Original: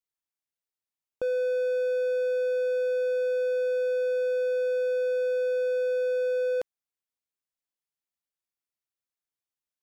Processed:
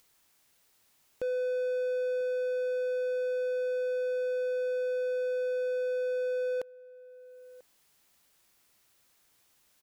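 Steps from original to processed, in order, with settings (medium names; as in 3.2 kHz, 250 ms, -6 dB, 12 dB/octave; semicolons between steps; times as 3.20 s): upward compressor, threshold -41 dBFS; echo from a far wall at 170 m, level -20 dB; trim -4 dB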